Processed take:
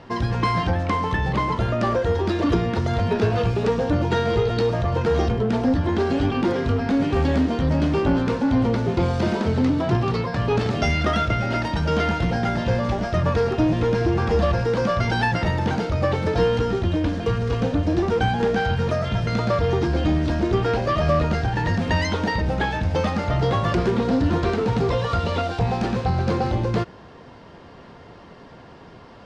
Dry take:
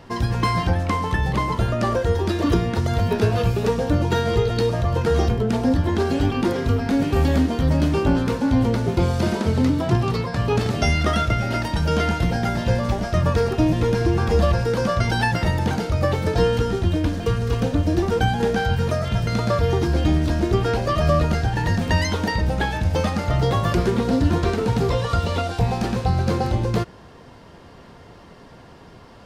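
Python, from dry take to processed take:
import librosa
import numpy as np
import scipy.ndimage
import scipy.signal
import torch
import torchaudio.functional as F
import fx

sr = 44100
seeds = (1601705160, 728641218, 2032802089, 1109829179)

p1 = fx.low_shelf(x, sr, hz=100.0, db=-6.0)
p2 = 10.0 ** (-21.5 / 20.0) * (np.abs((p1 / 10.0 ** (-21.5 / 20.0) + 3.0) % 4.0 - 2.0) - 1.0)
p3 = p1 + (p2 * 10.0 ** (-12.0 / 20.0))
y = fx.air_absorb(p3, sr, metres=97.0)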